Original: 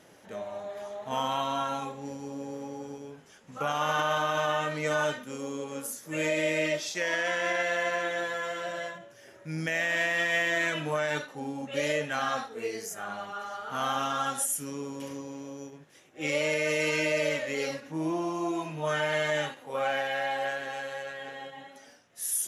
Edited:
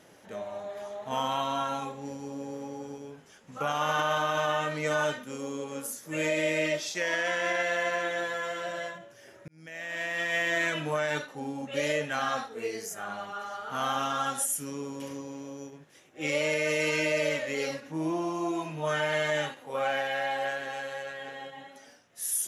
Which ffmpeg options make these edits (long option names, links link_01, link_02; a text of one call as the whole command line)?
ffmpeg -i in.wav -filter_complex "[0:a]asplit=2[link_01][link_02];[link_01]atrim=end=9.48,asetpts=PTS-STARTPTS,afade=type=out:start_time=9.476:duration=0.004:curve=hsin[link_03];[link_02]atrim=start=9.48,asetpts=PTS-STARTPTS,afade=type=in:duration=1.07[link_04];[link_03][link_04]concat=n=2:v=0:a=1" out.wav